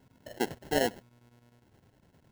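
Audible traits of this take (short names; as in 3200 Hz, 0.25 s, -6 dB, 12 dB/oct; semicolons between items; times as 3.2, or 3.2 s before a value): phasing stages 2, 0.88 Hz, lowest notch 750–2000 Hz; chopped level 9.9 Hz, depth 60%, duty 80%; aliases and images of a low sample rate 1200 Hz, jitter 0%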